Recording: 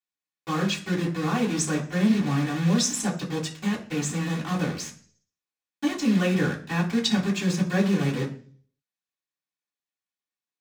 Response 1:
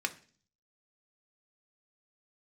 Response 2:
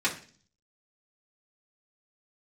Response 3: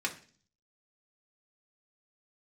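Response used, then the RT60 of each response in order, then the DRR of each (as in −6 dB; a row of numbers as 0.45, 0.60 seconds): 2; 0.45, 0.40, 0.40 seconds; 5.5, −6.0, 0.0 decibels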